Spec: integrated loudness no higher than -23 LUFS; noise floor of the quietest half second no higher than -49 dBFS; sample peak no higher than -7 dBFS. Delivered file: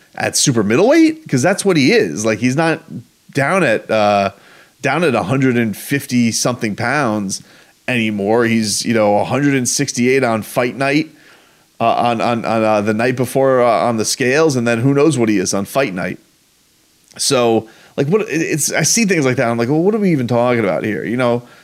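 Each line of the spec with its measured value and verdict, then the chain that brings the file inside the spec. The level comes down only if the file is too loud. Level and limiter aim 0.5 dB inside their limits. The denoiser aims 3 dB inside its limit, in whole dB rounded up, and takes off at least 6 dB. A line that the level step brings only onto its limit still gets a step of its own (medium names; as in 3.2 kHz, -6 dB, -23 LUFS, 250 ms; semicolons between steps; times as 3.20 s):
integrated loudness -15.0 LUFS: fail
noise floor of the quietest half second -55 dBFS: pass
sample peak -3.0 dBFS: fail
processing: trim -8.5 dB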